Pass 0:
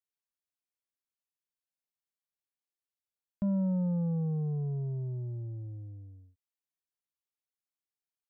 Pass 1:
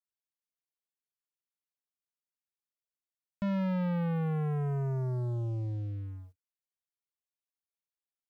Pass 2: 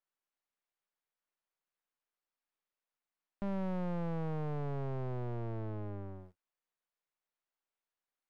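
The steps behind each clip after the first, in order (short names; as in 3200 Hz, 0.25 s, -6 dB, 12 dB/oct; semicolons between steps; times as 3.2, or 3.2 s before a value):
sample leveller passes 3; gain -2.5 dB
half-wave rectifier; overdrive pedal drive 18 dB, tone 2200 Hz, clips at -28.5 dBFS; high shelf 2900 Hz -9.5 dB; gain +1 dB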